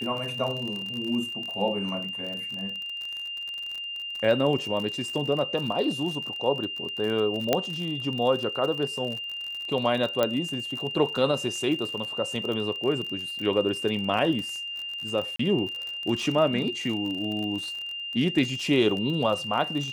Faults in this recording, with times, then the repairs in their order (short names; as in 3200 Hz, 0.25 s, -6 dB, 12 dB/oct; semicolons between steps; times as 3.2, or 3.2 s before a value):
crackle 41/s -31 dBFS
tone 2800 Hz -32 dBFS
7.53 pop -7 dBFS
10.23 pop -10 dBFS
15.36–15.39 gap 34 ms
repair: de-click; notch 2800 Hz, Q 30; interpolate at 15.36, 34 ms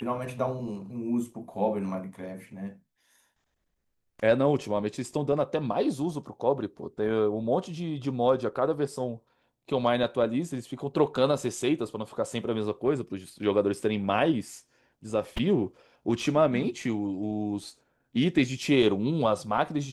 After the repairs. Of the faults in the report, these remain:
none